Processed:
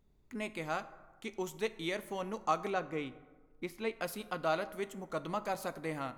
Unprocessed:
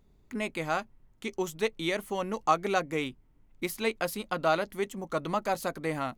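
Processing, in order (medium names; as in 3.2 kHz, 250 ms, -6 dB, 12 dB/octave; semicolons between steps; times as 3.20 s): 2.70–4.00 s: low-pass 2.3 kHz 6 dB/octave; plate-style reverb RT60 1.3 s, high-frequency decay 0.45×, DRR 13 dB; trim -6.5 dB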